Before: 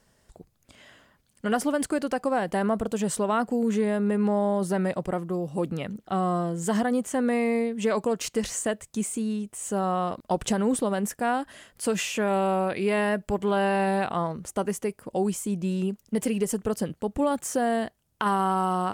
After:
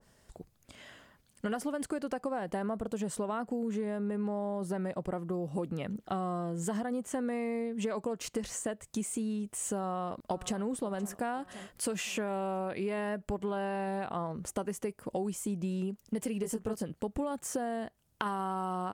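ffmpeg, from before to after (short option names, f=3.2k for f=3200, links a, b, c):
-filter_complex "[0:a]asplit=2[a][b];[b]afade=t=in:st=9.79:d=0.01,afade=t=out:st=10.62:d=0.01,aecho=0:1:520|1040|1560|2080|2600:0.133352|0.0733437|0.040339|0.0221865|0.0122026[c];[a][c]amix=inputs=2:normalize=0,asettb=1/sr,asplit=3[d][e][f];[d]atrim=end=16.424[g];[e]atrim=start=16.42:end=16.83,asetpts=PTS-STARTPTS,afade=t=in:d=0.004:c=qsin,afade=t=out:st=0.406:d=0.004:c=qsin,asplit=2[h][i];[i]adelay=18,volume=-4dB[j];[h][j]amix=inputs=2:normalize=0,atrim=end_sample=18081[k];[f]atrim=start=16.826[l];[g][k]acrossfade=d=0.004:c1=hsin:c2=qsin[m];[m][l]acrossfade=d=0.004:c1=qsin:c2=hsin,acompressor=threshold=-31dB:ratio=6,adynamicequalizer=threshold=0.00398:dfrequency=1600:dqfactor=0.7:tfrequency=1600:tqfactor=0.7:attack=5:release=100:ratio=0.375:range=2:mode=cutabove:tftype=highshelf"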